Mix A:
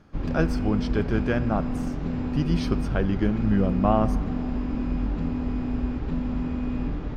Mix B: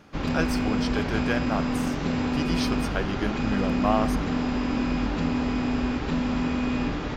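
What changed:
background +9.0 dB
master: add spectral tilt +3 dB per octave

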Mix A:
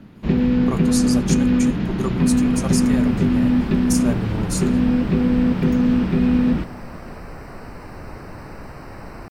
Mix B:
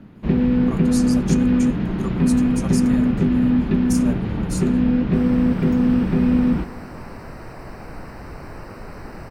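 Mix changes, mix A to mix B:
speech −5.5 dB
first sound: add high-shelf EQ 4,200 Hz −11.5 dB
second sound: entry +2.60 s

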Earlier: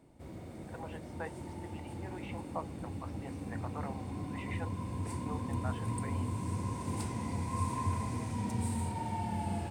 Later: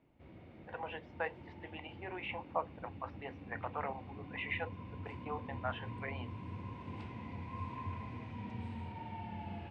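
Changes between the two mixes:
speech +12.0 dB
master: add transistor ladder low-pass 3,300 Hz, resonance 45%

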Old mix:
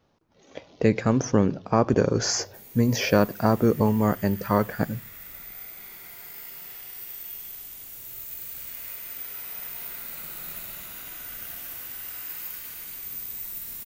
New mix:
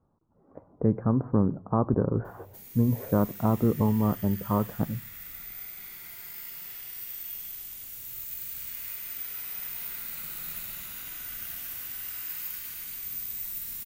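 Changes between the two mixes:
speech: add Butterworth low-pass 1,200 Hz 36 dB per octave
master: add parametric band 560 Hz −7.5 dB 1.8 octaves

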